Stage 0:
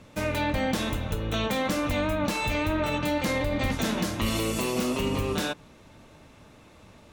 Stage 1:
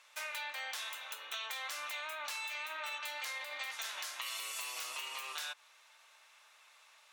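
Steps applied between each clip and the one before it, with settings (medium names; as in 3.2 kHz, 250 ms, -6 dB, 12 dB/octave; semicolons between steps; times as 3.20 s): Bessel high-pass 1.4 kHz, order 4; compression, threshold -36 dBFS, peak gain reduction 7 dB; trim -2 dB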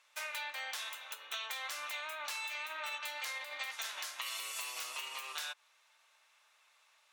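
upward expansion 1.5:1, over -54 dBFS; trim +1.5 dB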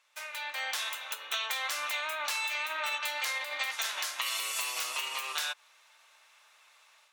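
level rider gain up to 9 dB; trim -1.5 dB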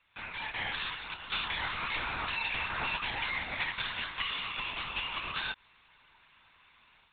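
LPC vocoder at 8 kHz whisper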